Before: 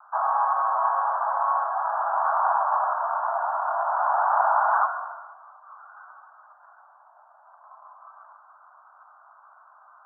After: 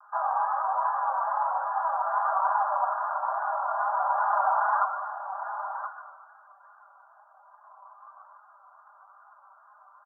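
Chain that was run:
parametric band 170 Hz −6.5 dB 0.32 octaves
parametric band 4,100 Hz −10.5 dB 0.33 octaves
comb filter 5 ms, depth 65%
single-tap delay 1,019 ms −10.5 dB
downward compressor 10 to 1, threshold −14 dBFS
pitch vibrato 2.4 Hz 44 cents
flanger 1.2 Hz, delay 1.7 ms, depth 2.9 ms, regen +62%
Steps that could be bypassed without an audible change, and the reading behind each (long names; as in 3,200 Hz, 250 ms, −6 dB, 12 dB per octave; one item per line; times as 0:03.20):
parametric band 170 Hz: nothing at its input below 540 Hz
parametric band 4,100 Hz: nothing at its input above 1,700 Hz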